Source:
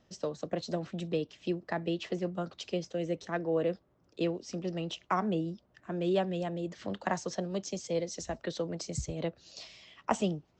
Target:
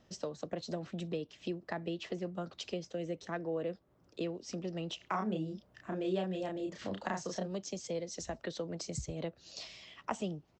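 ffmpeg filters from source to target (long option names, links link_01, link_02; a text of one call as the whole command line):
ffmpeg -i in.wav -filter_complex "[0:a]acompressor=threshold=-41dB:ratio=2,asplit=3[link_01][link_02][link_03];[link_01]afade=type=out:start_time=4.99:duration=0.02[link_04];[link_02]asplit=2[link_05][link_06];[link_06]adelay=32,volume=-3dB[link_07];[link_05][link_07]amix=inputs=2:normalize=0,afade=type=in:start_time=4.99:duration=0.02,afade=type=out:start_time=7.46:duration=0.02[link_08];[link_03]afade=type=in:start_time=7.46:duration=0.02[link_09];[link_04][link_08][link_09]amix=inputs=3:normalize=0,volume=1.5dB" out.wav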